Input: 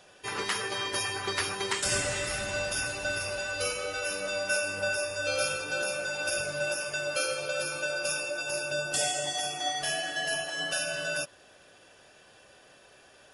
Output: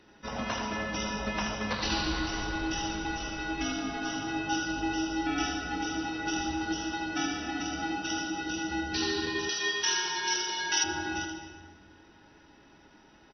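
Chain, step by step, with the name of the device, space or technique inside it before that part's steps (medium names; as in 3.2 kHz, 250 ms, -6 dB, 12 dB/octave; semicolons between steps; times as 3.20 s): monster voice (pitch shift -10.5 st; bass shelf 220 Hz +5.5 dB; delay 80 ms -6.5 dB; reverberation RT60 1.6 s, pre-delay 102 ms, DRR 7.5 dB); 9.49–10.84 s: tilt EQ +4.5 dB/octave; trim -3 dB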